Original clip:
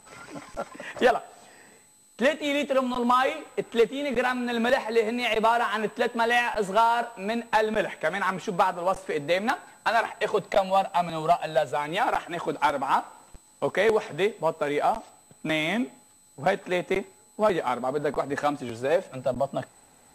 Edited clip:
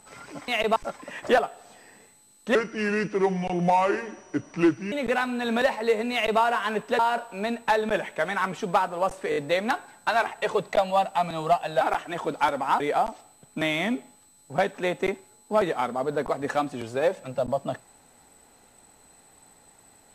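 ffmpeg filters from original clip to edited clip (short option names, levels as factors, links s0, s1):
-filter_complex "[0:a]asplit=11[s0][s1][s2][s3][s4][s5][s6][s7][s8][s9][s10];[s0]atrim=end=0.482[s11];[s1]atrim=start=5.198:end=5.482[s12];[s2]atrim=start=0.478:end=2.274[s13];[s3]atrim=start=2.27:end=4,asetpts=PTS-STARTPTS,asetrate=32193,aresample=44100[s14];[s4]atrim=start=3.996:end=6.072[s15];[s5]atrim=start=6.838:end=9.172[s16];[s6]atrim=start=9.148:end=9.172[s17];[s7]atrim=start=9.148:end=9.172[s18];[s8]atrim=start=9.148:end=11.602[s19];[s9]atrim=start=12.018:end=13.012[s20];[s10]atrim=start=14.678[s21];[s11][s12]acrossfade=d=0.004:c1=hsin:c2=hsin[s22];[s22][s13]acrossfade=d=0.004:c1=hsin:c2=hsin[s23];[s23][s14]acrossfade=d=0.004:c1=hsin:c2=hsin[s24];[s24][s15]acrossfade=d=0.004:c1=hsin:c2=hsin[s25];[s25][s16]acrossfade=d=0.004:c1=hsin:c2=hsin[s26];[s26][s17]acrossfade=d=0.004:c1=hsin:c2=hsin[s27];[s27][s18]acrossfade=d=0.004:c1=hsin:c2=hsin[s28];[s28][s19]acrossfade=d=0.004:c1=hsin:c2=hsin[s29];[s29][s20]acrossfade=d=0.004:c1=hsin:c2=hsin[s30];[s30][s21]acrossfade=d=0.004:c1=hsin:c2=hsin"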